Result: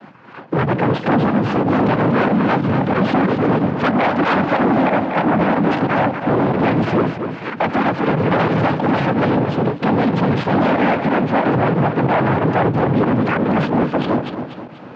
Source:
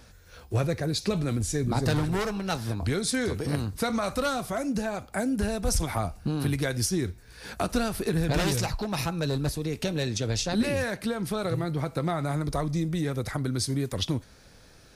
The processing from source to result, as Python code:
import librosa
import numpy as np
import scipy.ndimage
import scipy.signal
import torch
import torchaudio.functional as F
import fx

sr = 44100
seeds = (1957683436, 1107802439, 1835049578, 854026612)

p1 = fx.tracing_dist(x, sr, depth_ms=0.25)
p2 = fx.small_body(p1, sr, hz=(260.0, 630.0, 1400.0), ring_ms=45, db=10)
p3 = 10.0 ** (-24.0 / 20.0) * np.tanh(p2 / 10.0 ** (-24.0 / 20.0))
p4 = fx.noise_vocoder(p3, sr, seeds[0], bands=8)
p5 = fx.quant_dither(p4, sr, seeds[1], bits=6, dither='none')
p6 = p4 + (p5 * librosa.db_to_amplitude(-7.0))
p7 = fx.air_absorb(p6, sr, metres=150.0)
p8 = fx.fold_sine(p7, sr, drive_db=12, ceiling_db=-11.5)
p9 = p8 + fx.echo_feedback(p8, sr, ms=243, feedback_pct=42, wet_db=-7.5, dry=0)
p10 = fx.volume_shaper(p9, sr, bpm=92, per_beat=2, depth_db=-9, release_ms=60.0, shape='fast start')
p11 = fx.bandpass_edges(p10, sr, low_hz=130.0, high_hz=2300.0)
y = fx.end_taper(p11, sr, db_per_s=160.0)